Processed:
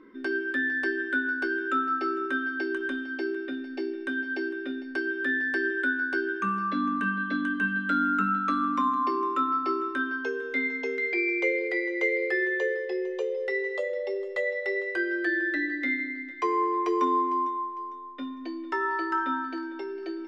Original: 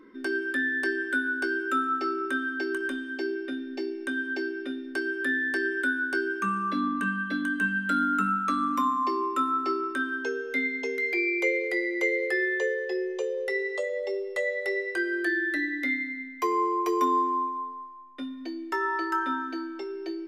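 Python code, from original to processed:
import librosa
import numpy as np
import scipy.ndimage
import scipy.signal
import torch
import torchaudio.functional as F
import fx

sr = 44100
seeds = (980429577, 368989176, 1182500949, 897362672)

y = scipy.signal.sosfilt(scipy.signal.butter(2, 4200.0, 'lowpass', fs=sr, output='sos'), x)
y = fx.echo_feedback(y, sr, ms=453, feedback_pct=37, wet_db=-16.5)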